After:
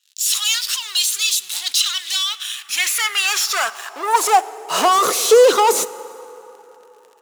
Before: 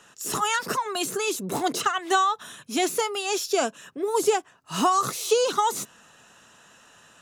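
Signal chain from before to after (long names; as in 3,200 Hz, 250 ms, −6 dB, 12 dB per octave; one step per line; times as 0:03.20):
leveller curve on the samples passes 5
in parallel at −9.5 dB: bit reduction 5 bits
on the sum: dense smooth reverb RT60 3.6 s, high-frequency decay 0.55×, DRR 16 dB
high-pass filter sweep 3,600 Hz → 450 Hz, 0:02.17–0:05.04
level −7 dB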